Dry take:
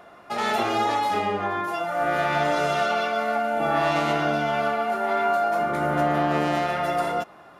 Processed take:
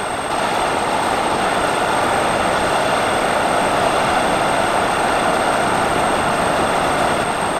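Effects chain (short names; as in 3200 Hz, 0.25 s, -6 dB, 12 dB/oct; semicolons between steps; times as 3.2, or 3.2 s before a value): per-bin compression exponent 0.2; whine 8400 Hz -33 dBFS; soft clip -10.5 dBFS, distortion -19 dB; whisperiser; on a send: echo 1 s -3.5 dB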